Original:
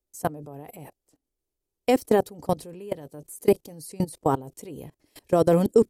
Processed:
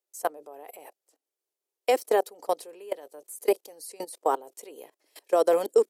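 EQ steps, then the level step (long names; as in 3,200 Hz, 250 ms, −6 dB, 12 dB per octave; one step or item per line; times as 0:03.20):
high-pass filter 420 Hz 24 dB per octave
0.0 dB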